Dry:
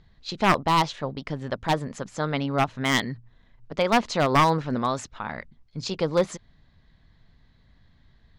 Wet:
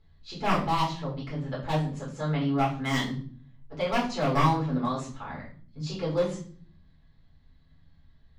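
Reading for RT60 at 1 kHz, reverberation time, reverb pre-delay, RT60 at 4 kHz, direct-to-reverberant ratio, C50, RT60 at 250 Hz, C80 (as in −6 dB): 0.45 s, 0.50 s, 5 ms, 0.40 s, −7.0 dB, 7.5 dB, 0.85 s, 12.0 dB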